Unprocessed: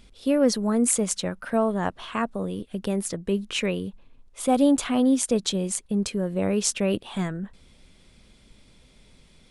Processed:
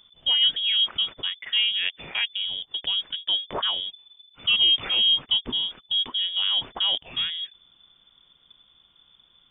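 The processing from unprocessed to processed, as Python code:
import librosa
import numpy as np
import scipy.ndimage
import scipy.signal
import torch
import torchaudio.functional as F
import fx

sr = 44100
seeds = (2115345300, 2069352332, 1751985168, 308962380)

y = fx.leveller(x, sr, passes=1)
y = fx.freq_invert(y, sr, carrier_hz=3500)
y = y * librosa.db_to_amplitude(-4.0)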